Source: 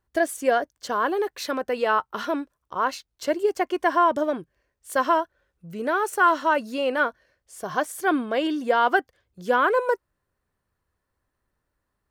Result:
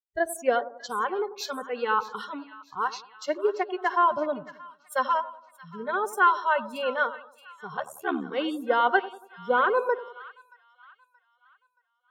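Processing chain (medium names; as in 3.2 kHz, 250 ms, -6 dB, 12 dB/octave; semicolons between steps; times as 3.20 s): spectral noise reduction 26 dB; on a send: two-band feedback delay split 1.1 kHz, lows 93 ms, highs 626 ms, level -13 dB; 7.76–8.34 s: on the sum: ring modulator 37 Hz; three bands expanded up and down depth 40%; trim -3 dB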